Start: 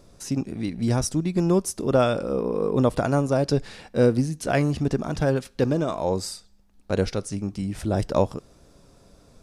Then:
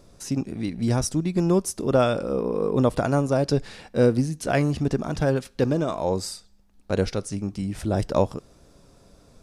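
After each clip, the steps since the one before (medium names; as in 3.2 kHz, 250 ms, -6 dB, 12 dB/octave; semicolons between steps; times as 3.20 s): no audible change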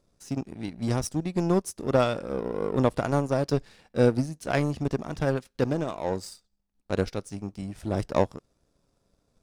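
power-law waveshaper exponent 1.4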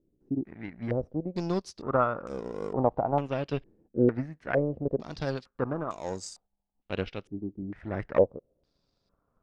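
step-sequenced low-pass 2.2 Hz 340–6900 Hz; trim -6 dB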